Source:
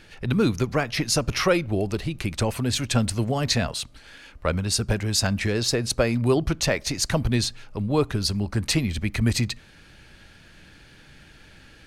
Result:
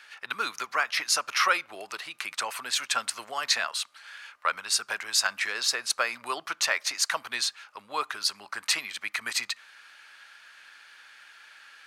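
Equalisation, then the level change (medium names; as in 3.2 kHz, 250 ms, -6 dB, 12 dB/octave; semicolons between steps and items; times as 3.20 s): resonant high-pass 1.2 kHz, resonance Q 1.9; -1.0 dB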